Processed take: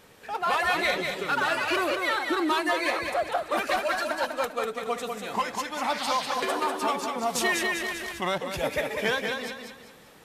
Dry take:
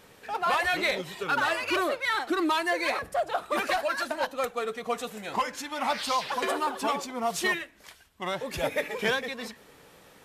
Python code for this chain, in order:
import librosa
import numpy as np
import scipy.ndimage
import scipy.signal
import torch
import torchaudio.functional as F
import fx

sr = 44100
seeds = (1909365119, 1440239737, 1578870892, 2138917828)

p1 = x + fx.echo_feedback(x, sr, ms=196, feedback_pct=36, wet_db=-5.0, dry=0)
y = fx.env_flatten(p1, sr, amount_pct=50, at=(7.35, 8.38))